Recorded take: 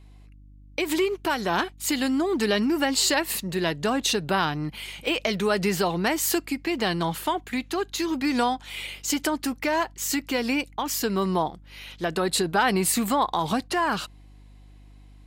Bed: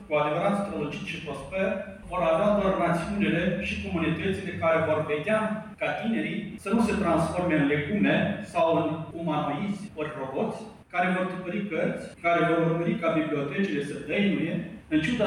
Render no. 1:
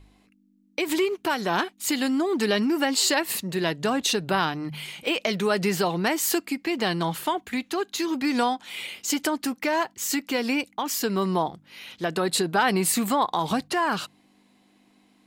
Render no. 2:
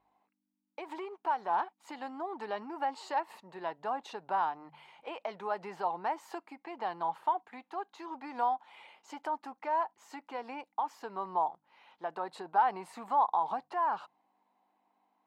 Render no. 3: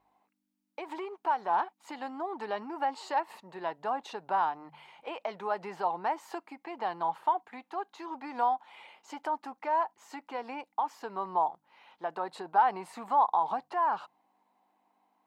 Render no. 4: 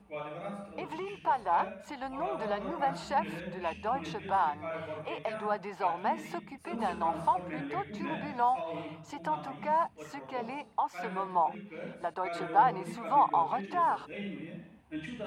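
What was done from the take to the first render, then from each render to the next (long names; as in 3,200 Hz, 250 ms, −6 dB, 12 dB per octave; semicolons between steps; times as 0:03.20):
hum removal 50 Hz, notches 3
resonant band-pass 870 Hz, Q 4.3
level +2.5 dB
mix in bed −15 dB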